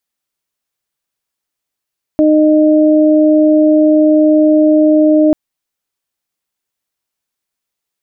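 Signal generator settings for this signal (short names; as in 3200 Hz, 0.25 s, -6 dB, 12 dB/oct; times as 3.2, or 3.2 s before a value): steady additive tone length 3.14 s, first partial 307 Hz, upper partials -4 dB, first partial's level -7 dB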